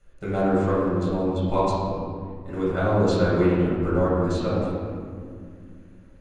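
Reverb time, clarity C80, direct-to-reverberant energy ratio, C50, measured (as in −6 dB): 2.2 s, −0.5 dB, −10.0 dB, −2.5 dB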